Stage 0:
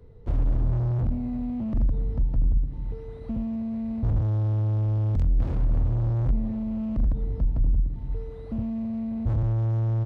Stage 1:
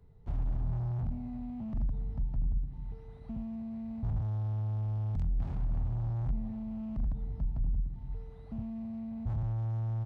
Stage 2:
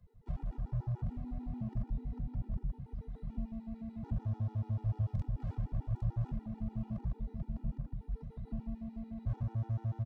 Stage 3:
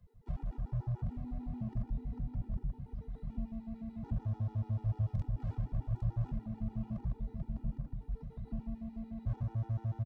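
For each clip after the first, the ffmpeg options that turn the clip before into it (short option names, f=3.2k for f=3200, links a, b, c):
-af "equalizer=f=160:t=o:w=0.33:g=5,equalizer=f=315:t=o:w=0.33:g=-8,equalizer=f=500:t=o:w=0.33:g=-10,equalizer=f=800:t=o:w=0.33:g=5,volume=-9dB"
-filter_complex "[0:a]acrossover=split=100|710[a][b][c];[a]volume=33.5dB,asoftclip=hard,volume=-33.5dB[d];[d][b][c]amix=inputs=3:normalize=0,aecho=1:1:809|1618|2427|3236:0.501|0.14|0.0393|0.011,afftfilt=real='re*gt(sin(2*PI*6.8*pts/sr)*(1-2*mod(floor(b*sr/1024/250),2)),0)':imag='im*gt(sin(2*PI*6.8*pts/sr)*(1-2*mod(floor(b*sr/1024/250),2)),0)':win_size=1024:overlap=0.75"
-af "aecho=1:1:455|910|1365|1820:0.0891|0.0463|0.0241|0.0125"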